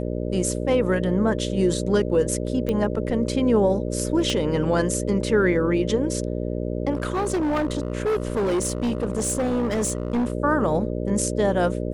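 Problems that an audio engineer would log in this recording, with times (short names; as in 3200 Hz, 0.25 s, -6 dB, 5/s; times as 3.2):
buzz 60 Hz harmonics 10 -27 dBFS
2.69 pop -14 dBFS
4.3 pop -13 dBFS
6.93–10.33 clipped -19.5 dBFS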